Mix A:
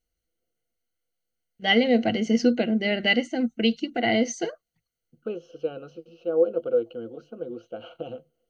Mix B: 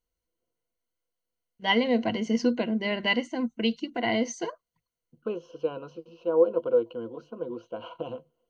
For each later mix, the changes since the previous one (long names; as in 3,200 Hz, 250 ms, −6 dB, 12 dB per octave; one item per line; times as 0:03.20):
first voice −4.0 dB
master: remove Butterworth band-reject 1,000 Hz, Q 3.3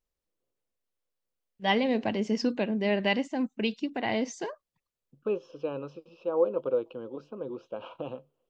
master: remove EQ curve with evenly spaced ripples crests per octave 1.9, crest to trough 12 dB